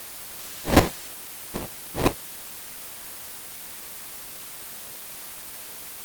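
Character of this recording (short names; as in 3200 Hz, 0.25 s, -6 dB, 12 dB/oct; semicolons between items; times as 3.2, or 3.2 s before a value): aliases and images of a low sample rate 1400 Hz, jitter 20%; chopped level 3.9 Hz, depth 60%, duty 10%; a quantiser's noise floor 8-bit, dither triangular; Opus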